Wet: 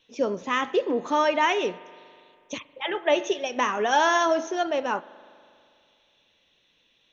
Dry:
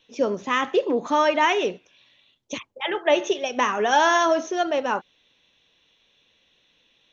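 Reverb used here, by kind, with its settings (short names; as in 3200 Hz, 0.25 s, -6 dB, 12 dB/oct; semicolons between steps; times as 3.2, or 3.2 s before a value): spring tank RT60 2.4 s, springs 40 ms, chirp 40 ms, DRR 18.5 dB; gain -2.5 dB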